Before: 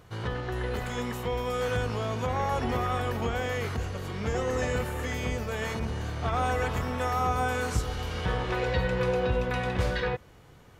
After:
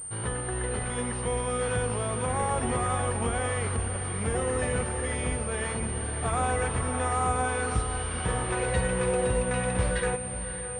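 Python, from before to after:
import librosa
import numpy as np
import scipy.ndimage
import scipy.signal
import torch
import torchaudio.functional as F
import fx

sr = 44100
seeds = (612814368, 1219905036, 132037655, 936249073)

y = fx.echo_diffused(x, sr, ms=568, feedback_pct=49, wet_db=-10)
y = fx.pwm(y, sr, carrier_hz=8900.0)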